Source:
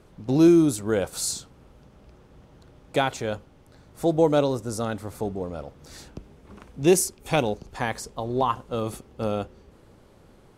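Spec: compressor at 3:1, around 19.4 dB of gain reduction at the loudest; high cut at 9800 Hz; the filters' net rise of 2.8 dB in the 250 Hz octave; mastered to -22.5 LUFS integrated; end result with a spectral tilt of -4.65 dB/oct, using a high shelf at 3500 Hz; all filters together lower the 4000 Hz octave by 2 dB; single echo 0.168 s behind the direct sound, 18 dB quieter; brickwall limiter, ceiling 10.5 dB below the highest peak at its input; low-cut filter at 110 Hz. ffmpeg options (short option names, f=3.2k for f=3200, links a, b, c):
-af "highpass=110,lowpass=9.8k,equalizer=f=250:t=o:g=4.5,highshelf=f=3.5k:g=7,equalizer=f=4k:t=o:g=-7.5,acompressor=threshold=-38dB:ratio=3,alimiter=level_in=6dB:limit=-24dB:level=0:latency=1,volume=-6dB,aecho=1:1:168:0.126,volume=19dB"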